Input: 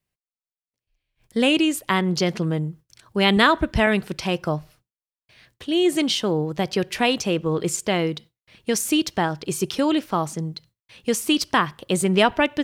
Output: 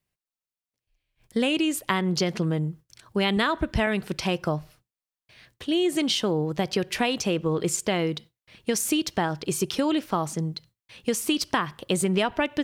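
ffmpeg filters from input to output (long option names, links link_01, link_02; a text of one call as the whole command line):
ffmpeg -i in.wav -af "acompressor=threshold=-20dB:ratio=6" out.wav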